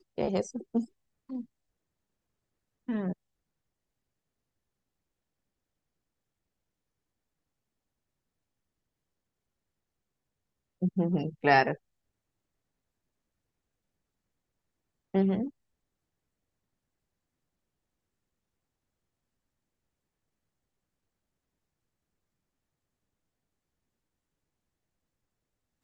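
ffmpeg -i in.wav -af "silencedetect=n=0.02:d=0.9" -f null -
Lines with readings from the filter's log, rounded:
silence_start: 1.41
silence_end: 2.89 | silence_duration: 1.48
silence_start: 3.13
silence_end: 10.82 | silence_duration: 7.70
silence_start: 11.74
silence_end: 15.14 | silence_duration: 3.41
silence_start: 15.48
silence_end: 25.84 | silence_duration: 10.36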